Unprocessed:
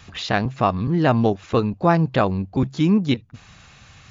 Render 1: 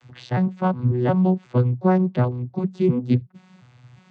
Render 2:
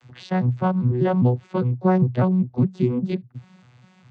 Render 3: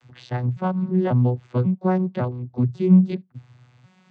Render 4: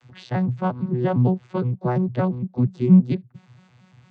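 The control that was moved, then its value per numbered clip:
vocoder on a broken chord, a note every: 360 ms, 201 ms, 548 ms, 115 ms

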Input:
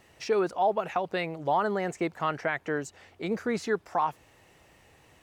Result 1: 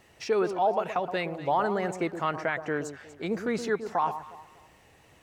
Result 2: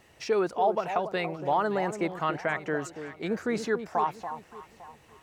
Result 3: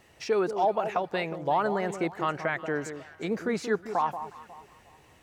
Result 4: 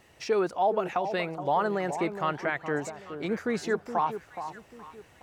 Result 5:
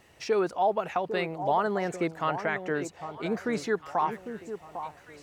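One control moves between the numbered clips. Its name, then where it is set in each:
echo whose repeats swap between lows and highs, time: 120 ms, 283 ms, 181 ms, 420 ms, 801 ms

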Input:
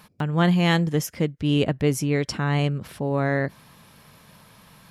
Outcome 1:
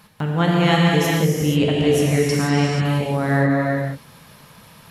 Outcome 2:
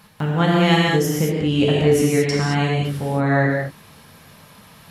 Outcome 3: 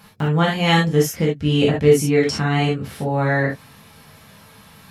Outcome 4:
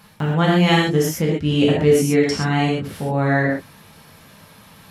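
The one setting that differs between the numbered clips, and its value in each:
gated-style reverb, gate: 510 ms, 250 ms, 90 ms, 150 ms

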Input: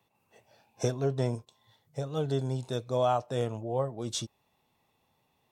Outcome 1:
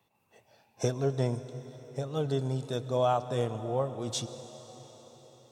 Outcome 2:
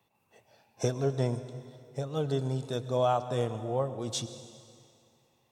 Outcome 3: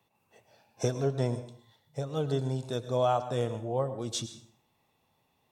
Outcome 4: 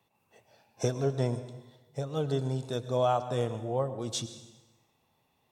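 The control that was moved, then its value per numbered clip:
plate-style reverb, RT60: 5.2 s, 2.3 s, 0.51 s, 1.1 s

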